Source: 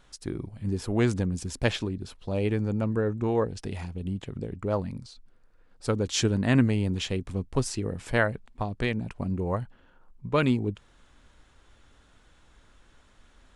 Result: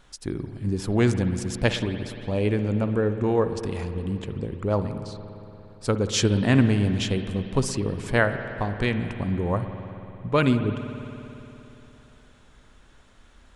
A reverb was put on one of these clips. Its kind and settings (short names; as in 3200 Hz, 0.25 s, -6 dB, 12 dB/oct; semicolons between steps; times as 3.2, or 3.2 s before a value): spring tank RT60 3.3 s, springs 58 ms, chirp 30 ms, DRR 8.5 dB; gain +3 dB